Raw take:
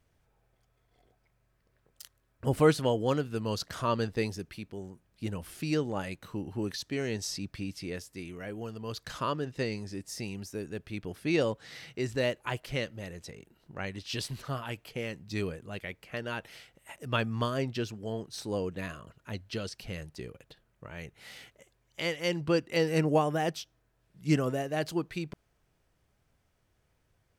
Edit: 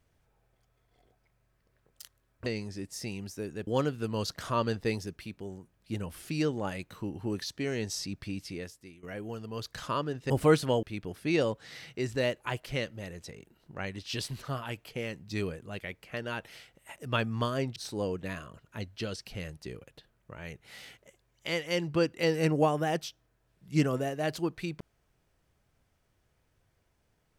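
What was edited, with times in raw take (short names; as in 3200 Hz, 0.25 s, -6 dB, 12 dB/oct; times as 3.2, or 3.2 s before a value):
2.46–2.99 swap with 9.62–10.83
7.78–8.35 fade out, to -17 dB
17.76–18.29 cut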